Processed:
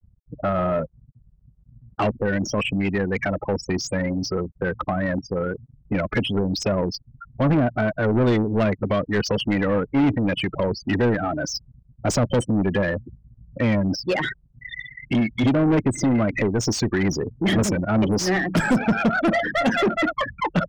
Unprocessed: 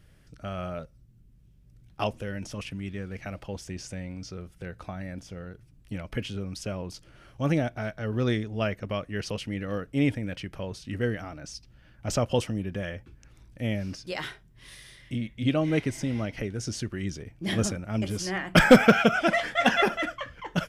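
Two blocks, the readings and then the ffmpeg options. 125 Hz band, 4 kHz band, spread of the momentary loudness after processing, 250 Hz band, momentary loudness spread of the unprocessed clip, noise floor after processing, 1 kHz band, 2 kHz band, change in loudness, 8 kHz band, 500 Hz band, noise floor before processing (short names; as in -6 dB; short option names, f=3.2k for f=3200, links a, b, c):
+6.5 dB, +4.0 dB, 8 LU, +7.0 dB, 17 LU, -57 dBFS, +5.0 dB, +3.5 dB, +5.5 dB, +6.5 dB, +5.5 dB, -57 dBFS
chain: -filter_complex "[0:a]acrossover=split=340|6400[a][b][c];[b]acompressor=threshold=-42dB:ratio=4[d];[a][d][c]amix=inputs=3:normalize=0,afftfilt=real='re*gte(hypot(re,im),0.0141)':imag='im*gte(hypot(re,im),0.0141)':win_size=1024:overlap=0.75,alimiter=limit=-17.5dB:level=0:latency=1:release=200,tremolo=f=110:d=0.333,asplit=2[e][f];[f]highpass=f=720:p=1,volume=27dB,asoftclip=type=tanh:threshold=-17.5dB[g];[e][g]amix=inputs=2:normalize=0,lowpass=f=2.3k:p=1,volume=-6dB,volume=7dB"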